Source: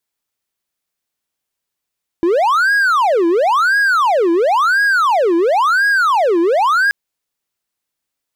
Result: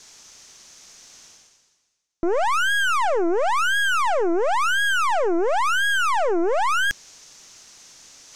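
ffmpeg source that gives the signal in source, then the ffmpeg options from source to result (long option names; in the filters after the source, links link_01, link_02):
-f lavfi -i "aevalsrc='0.376*(1-4*abs(mod((991.5*t-658.5/(2*PI*0.96)*sin(2*PI*0.96*t))+0.25,1)-0.5))':duration=4.68:sample_rate=44100"
-af "areverse,acompressor=mode=upward:threshold=-17dB:ratio=2.5,areverse,lowpass=frequency=6200:width_type=q:width=4,aeval=exprs='(tanh(8.91*val(0)+0.8)-tanh(0.8))/8.91':channel_layout=same"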